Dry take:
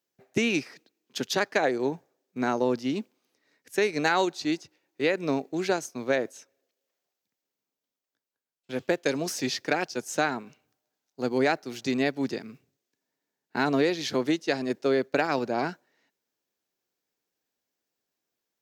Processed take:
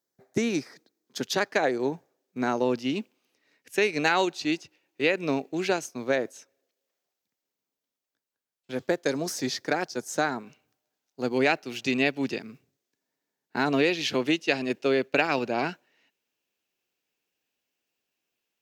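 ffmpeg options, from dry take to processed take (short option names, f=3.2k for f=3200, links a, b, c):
-af "asetnsamples=n=441:p=0,asendcmd='1.21 equalizer g 0;2.55 equalizer g 7;5.89 equalizer g 0;8.75 equalizer g -6.5;10.43 equalizer g 2.5;11.34 equalizer g 11;12.39 equalizer g 0.5;13.72 equalizer g 11.5',equalizer=f=2.7k:t=o:w=0.48:g=-11"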